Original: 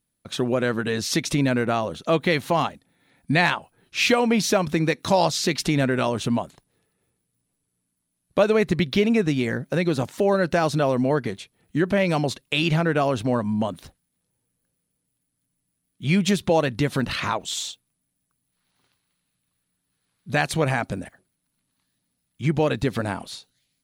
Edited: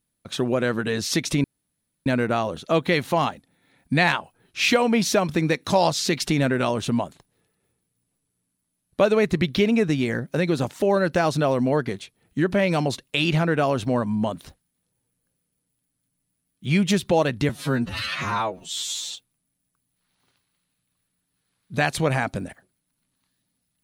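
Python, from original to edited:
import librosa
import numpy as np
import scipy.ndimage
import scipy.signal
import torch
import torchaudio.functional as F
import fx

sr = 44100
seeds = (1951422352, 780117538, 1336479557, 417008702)

y = fx.edit(x, sr, fx.insert_room_tone(at_s=1.44, length_s=0.62),
    fx.stretch_span(start_s=16.87, length_s=0.82, factor=2.0), tone=tone)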